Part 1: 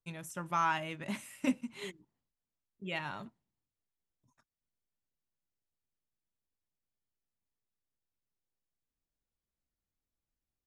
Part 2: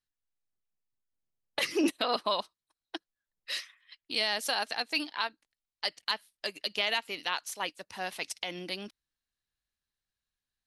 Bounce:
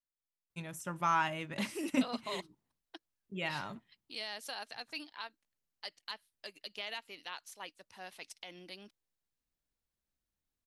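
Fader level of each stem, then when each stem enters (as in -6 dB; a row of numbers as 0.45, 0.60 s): +0.5, -12.0 dB; 0.50, 0.00 s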